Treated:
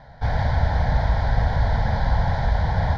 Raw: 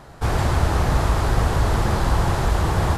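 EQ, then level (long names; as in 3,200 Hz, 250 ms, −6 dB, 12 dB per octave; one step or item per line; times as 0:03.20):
low-pass filter 3,600 Hz 12 dB per octave
phaser with its sweep stopped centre 1,800 Hz, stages 8
0.0 dB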